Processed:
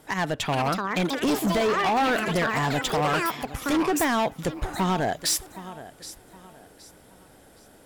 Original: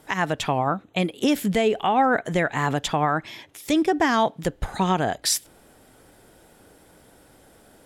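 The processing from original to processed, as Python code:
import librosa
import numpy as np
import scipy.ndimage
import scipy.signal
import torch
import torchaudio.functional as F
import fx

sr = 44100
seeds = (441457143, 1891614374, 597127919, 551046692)

y = fx.echo_pitch(x, sr, ms=458, semitones=7, count=2, db_per_echo=-6.0)
y = fx.echo_feedback(y, sr, ms=769, feedback_pct=32, wet_db=-18.0)
y = np.clip(y, -10.0 ** (-19.5 / 20.0), 10.0 ** (-19.5 / 20.0))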